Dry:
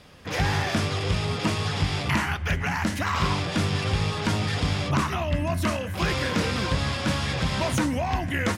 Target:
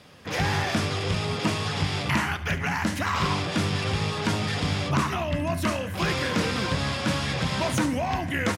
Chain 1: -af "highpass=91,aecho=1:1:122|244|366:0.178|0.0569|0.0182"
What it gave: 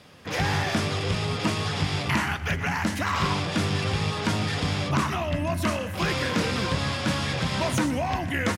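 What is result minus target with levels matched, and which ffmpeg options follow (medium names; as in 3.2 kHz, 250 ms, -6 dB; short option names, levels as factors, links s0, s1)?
echo 50 ms late
-af "highpass=91,aecho=1:1:72|144|216:0.178|0.0569|0.0182"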